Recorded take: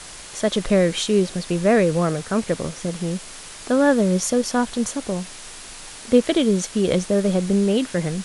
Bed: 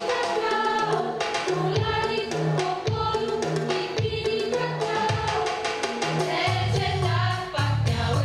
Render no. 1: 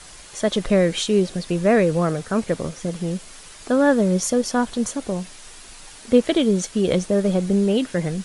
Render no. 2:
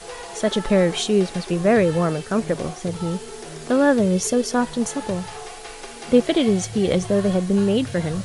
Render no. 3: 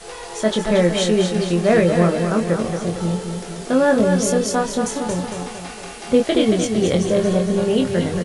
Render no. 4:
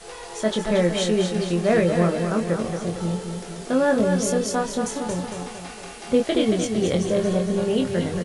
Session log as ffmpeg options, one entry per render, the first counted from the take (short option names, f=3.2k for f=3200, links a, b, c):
-af "afftdn=nr=6:nf=-39"
-filter_complex "[1:a]volume=-11dB[a];[0:a][a]amix=inputs=2:normalize=0"
-filter_complex "[0:a]asplit=2[a][b];[b]adelay=23,volume=-4.5dB[c];[a][c]amix=inputs=2:normalize=0,aecho=1:1:228|456|684|912|1140|1368:0.473|0.246|0.128|0.0665|0.0346|0.018"
-af "volume=-4dB"